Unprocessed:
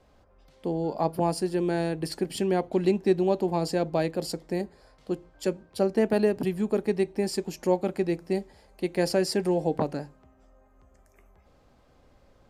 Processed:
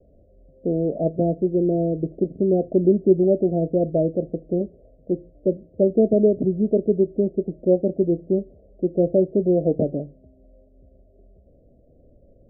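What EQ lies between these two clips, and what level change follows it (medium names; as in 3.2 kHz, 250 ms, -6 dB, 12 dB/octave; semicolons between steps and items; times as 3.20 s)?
steep low-pass 670 Hz 96 dB/octave; +6.5 dB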